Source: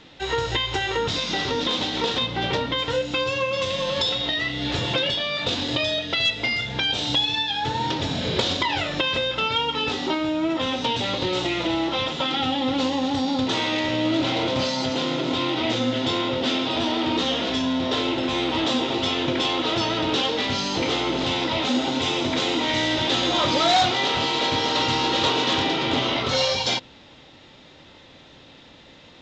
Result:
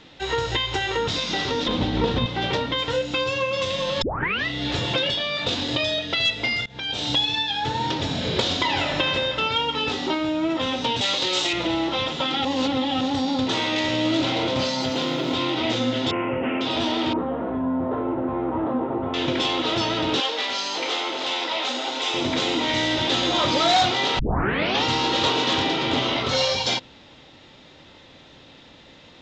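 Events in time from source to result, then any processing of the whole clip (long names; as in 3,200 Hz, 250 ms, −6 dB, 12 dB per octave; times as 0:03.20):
0:01.68–0:02.26: RIAA equalisation playback
0:04.02: tape start 0.44 s
0:06.66–0:07.07: fade in, from −22.5 dB
0:08.47–0:09.00: thrown reverb, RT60 2.2 s, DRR 3 dB
0:11.01–0:11.53: RIAA equalisation recording
0:12.45–0:13.01: reverse
0:13.76–0:14.25: high-shelf EQ 4,900 Hz +7 dB
0:14.81–0:15.34: bit-depth reduction 10 bits, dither none
0:16.11–0:16.61: Butterworth low-pass 2,800 Hz 96 dB per octave
0:17.13–0:19.14: low-pass filter 1,300 Hz 24 dB per octave
0:20.20–0:22.14: high-pass filter 530 Hz
0:24.19: tape start 0.65 s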